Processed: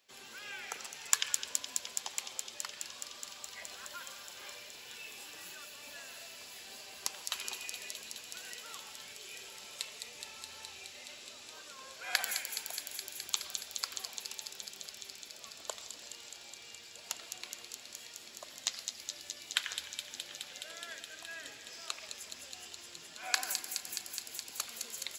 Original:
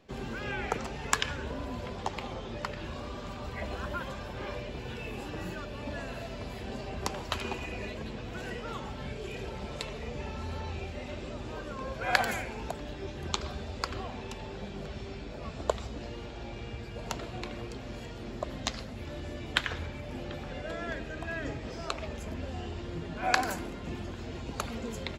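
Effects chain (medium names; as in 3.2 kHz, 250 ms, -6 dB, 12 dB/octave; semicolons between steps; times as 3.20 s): differentiator; feedback echo behind a high-pass 210 ms, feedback 84%, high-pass 3.9 kHz, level -4 dB; spring tank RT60 3 s, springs 36/41 ms, chirp 80 ms, DRR 13 dB; trim +4.5 dB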